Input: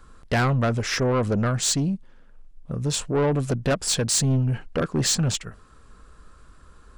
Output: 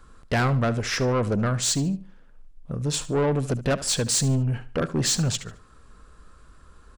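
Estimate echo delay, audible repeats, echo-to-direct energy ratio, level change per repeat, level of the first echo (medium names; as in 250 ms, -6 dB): 73 ms, 2, -15.5 dB, -10.5 dB, -16.0 dB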